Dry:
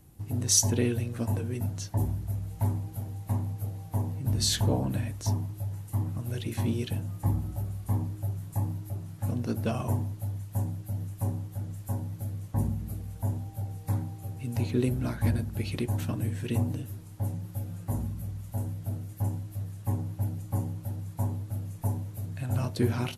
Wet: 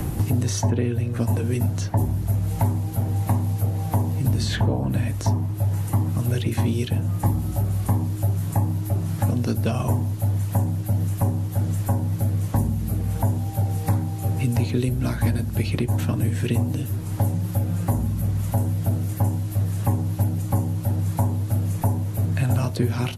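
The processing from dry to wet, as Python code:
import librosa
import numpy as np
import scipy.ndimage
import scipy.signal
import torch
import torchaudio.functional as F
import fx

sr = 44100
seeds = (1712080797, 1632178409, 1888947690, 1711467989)

y = fx.band_squash(x, sr, depth_pct=100)
y = F.gain(torch.from_numpy(y), 7.5).numpy()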